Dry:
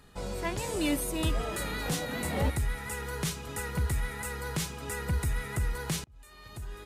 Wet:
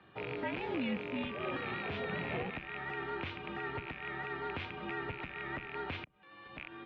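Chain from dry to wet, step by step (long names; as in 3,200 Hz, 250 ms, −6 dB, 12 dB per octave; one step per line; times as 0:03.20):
loose part that buzzes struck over −35 dBFS, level −26 dBFS
brickwall limiter −26 dBFS, peak gain reduction 9 dB
single-sideband voice off tune −73 Hz 200–3,300 Hz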